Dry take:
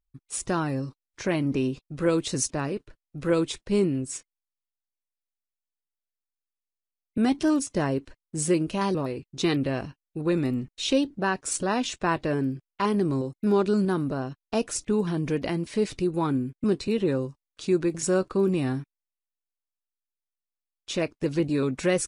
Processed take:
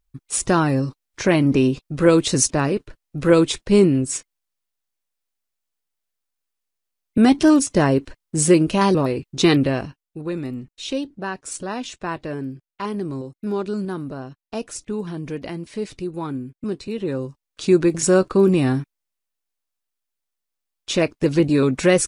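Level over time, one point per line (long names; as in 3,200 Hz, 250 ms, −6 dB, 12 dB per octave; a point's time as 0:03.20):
0:09.56 +9 dB
0:10.30 −2.5 dB
0:16.93 −2.5 dB
0:17.66 +8 dB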